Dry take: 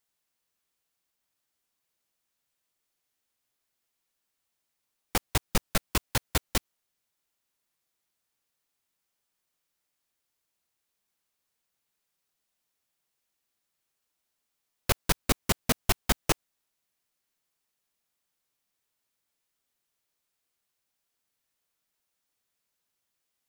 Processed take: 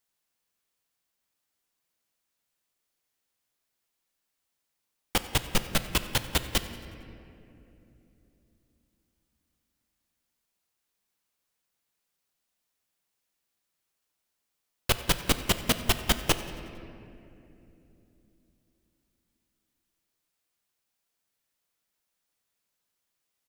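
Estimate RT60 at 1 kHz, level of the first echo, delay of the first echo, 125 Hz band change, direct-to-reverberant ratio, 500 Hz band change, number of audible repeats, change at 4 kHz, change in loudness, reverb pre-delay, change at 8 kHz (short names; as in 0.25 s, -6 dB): 2.4 s, -20.5 dB, 91 ms, +0.5 dB, 9.5 dB, +0.5 dB, 2, +4.0 dB, +1.5 dB, 4 ms, +0.5 dB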